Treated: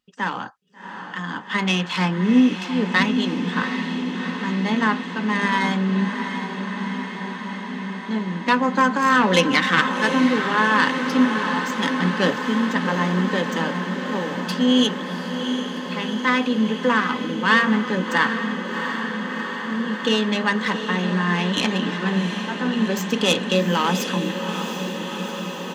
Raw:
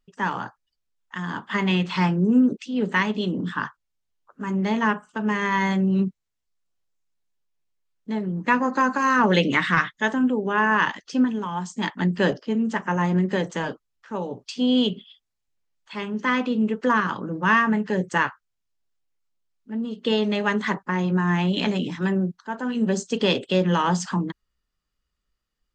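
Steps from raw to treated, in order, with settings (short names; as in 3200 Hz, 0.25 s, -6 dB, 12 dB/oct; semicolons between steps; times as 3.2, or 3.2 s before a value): tracing distortion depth 0.089 ms; HPF 110 Hz; bell 3300 Hz +5 dB 1.3 oct; comb 3.9 ms, depth 34%; on a send: diffused feedback echo 0.734 s, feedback 78%, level -8 dB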